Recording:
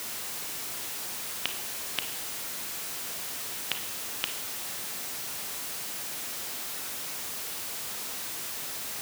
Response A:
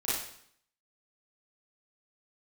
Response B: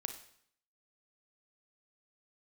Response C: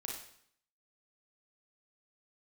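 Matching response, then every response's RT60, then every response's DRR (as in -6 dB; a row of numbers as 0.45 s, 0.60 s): B; 0.65 s, 0.65 s, 0.65 s; -11.0 dB, 6.5 dB, -1.5 dB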